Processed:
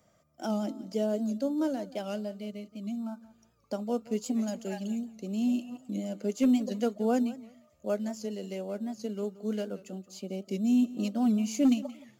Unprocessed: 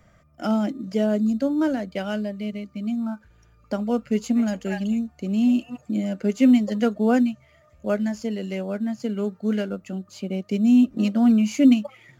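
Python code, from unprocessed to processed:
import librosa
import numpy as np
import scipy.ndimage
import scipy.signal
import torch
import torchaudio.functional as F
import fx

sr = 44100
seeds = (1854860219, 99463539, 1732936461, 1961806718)

y = fx.highpass(x, sr, hz=570.0, slope=6)
y = fx.peak_eq(y, sr, hz=1800.0, db=-13.5, octaves=1.7)
y = np.clip(y, -10.0 ** (-17.5 / 20.0), 10.0 ** (-17.5 / 20.0))
y = fx.echo_feedback(y, sr, ms=176, feedback_pct=24, wet_db=-18.0)
y = fx.record_warp(y, sr, rpm=78.0, depth_cents=100.0)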